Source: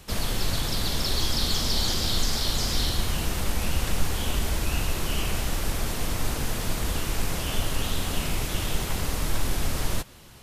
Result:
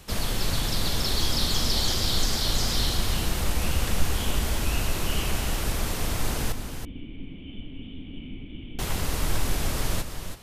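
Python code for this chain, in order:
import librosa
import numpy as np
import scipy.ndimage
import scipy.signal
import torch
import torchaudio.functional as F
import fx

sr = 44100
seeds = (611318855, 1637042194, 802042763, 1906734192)

y = fx.formant_cascade(x, sr, vowel='i', at=(6.52, 8.79))
y = y + 10.0 ** (-8.5 / 20.0) * np.pad(y, (int(328 * sr / 1000.0), 0))[:len(y)]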